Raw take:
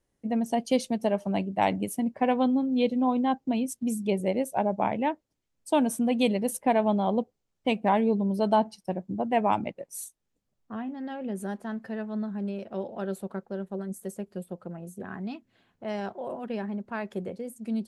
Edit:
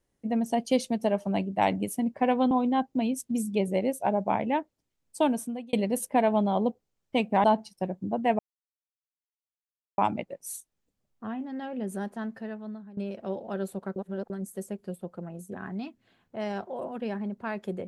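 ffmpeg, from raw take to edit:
-filter_complex "[0:a]asplit=8[a][b][c][d][e][f][g][h];[a]atrim=end=2.512[i];[b]atrim=start=3.028:end=6.25,asetpts=PTS-STARTPTS,afade=t=out:st=2.682:d=0.54[j];[c]atrim=start=6.25:end=7.962,asetpts=PTS-STARTPTS,afade=t=in:d=0.004:c=hsin[k];[d]atrim=start=8.508:end=9.46,asetpts=PTS-STARTPTS,afade=t=out:st=0.948:d=0.004:c=hsin,apad=pad_dur=1.59[l];[e]atrim=start=9.46:end=12.45,asetpts=PTS-STARTPTS,afade=t=in:d=0.004:c=hsin,afade=t=out:st=2.24:d=0.75:silence=0.133352[m];[f]atrim=start=12.45:end=13.442,asetpts=PTS-STARTPTS,afade=t=in:d=0.004:c=hsin:silence=0.133352[n];[g]atrim=start=13.438:end=13.782,asetpts=PTS-STARTPTS,areverse[o];[h]atrim=start=13.778[p];[j][k]concat=n=2:v=0:a=1[q];[i][q]acrossfade=d=0.004:c1=hsin:c2=hsin[r];[l][m][n]concat=n=3:v=0:a=1[s];[r][s]acrossfade=d=0.004:c1=hsin:c2=hsin[t];[t][o]acrossfade=d=0.004:c1=hsin:c2=hsin[u];[u][p]acrossfade=d=0.004:c1=hsin:c2=hsin"

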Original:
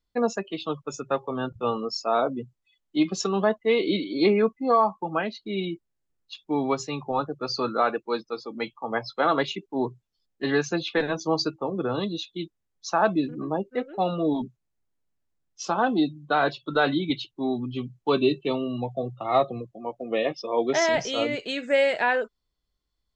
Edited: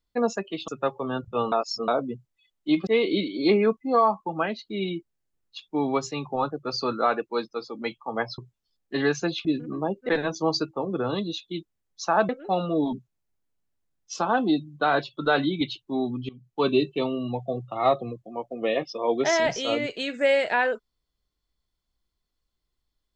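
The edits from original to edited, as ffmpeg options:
-filter_complex "[0:a]asplit=10[a][b][c][d][e][f][g][h][i][j];[a]atrim=end=0.682[k];[b]atrim=start=0.958:end=1.802[l];[c]atrim=start=1.798:end=2.162,asetpts=PTS-STARTPTS,areverse[m];[d]atrim=start=2.158:end=3.152[n];[e]atrim=start=3.628:end=9.142[o];[f]atrim=start=9.868:end=10.942[p];[g]atrim=start=13.138:end=13.782[q];[h]atrim=start=10.938:end=13.142[r];[i]atrim=start=13.778:end=17.78,asetpts=PTS-STARTPTS,afade=t=out:st=3.998:d=0.004:c=hsin:silence=0.0841395[s];[j]atrim=start=17.78,asetpts=PTS-STARTPTS,afade=t=in:d=0.39:silence=0.0841395[t];[k][l]acrossfade=d=0.004:c1=hsin:c2=hsin[u];[u][m]acrossfade=d=0.004:c1=hsin:c2=hsin[v];[v][n]acrossfade=d=0.004:c1=hsin:c2=hsin[w];[w][o]acrossfade=d=0.004:c1=hsin:c2=hsin[x];[x][p]acrossfade=d=0.004:c1=hsin:c2=hsin[y];[y][q]acrossfade=d=0.004:c1=hsin:c2=hsin[z];[z][r]acrossfade=d=0.004:c1=hsin:c2=hsin[aa];[s][t]concat=n=2:v=0:a=1[ab];[aa][ab]acrossfade=d=0.004:c1=hsin:c2=hsin"

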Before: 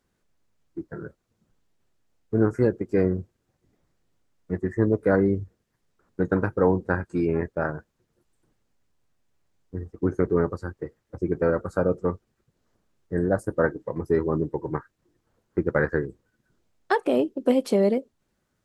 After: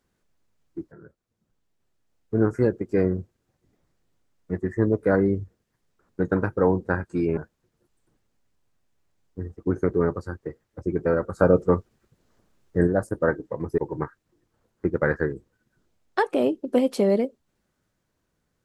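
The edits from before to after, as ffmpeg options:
-filter_complex "[0:a]asplit=6[a][b][c][d][e][f];[a]atrim=end=0.92,asetpts=PTS-STARTPTS,afade=t=out:st=0.916:d=0.004:c=hsin:silence=0.237137[g];[b]atrim=start=0.92:end=7.372,asetpts=PTS-STARTPTS,afade=t=in:d=1.51:silence=0.237137[h];[c]atrim=start=7.728:end=11.752[i];[d]atrim=start=11.748:end=13.232,asetpts=PTS-STARTPTS,volume=5.5dB[j];[e]atrim=start=13.228:end=14.142[k];[f]atrim=start=14.508[l];[g][h]concat=n=2:v=0:a=1[m];[m][i]acrossfade=d=0.004:c1=hsin:c2=hsin[n];[n][j]acrossfade=d=0.004:c1=hsin:c2=hsin[o];[o][k]acrossfade=d=0.004:c1=hsin:c2=hsin[p];[p][l]acrossfade=d=0.004:c1=hsin:c2=hsin"

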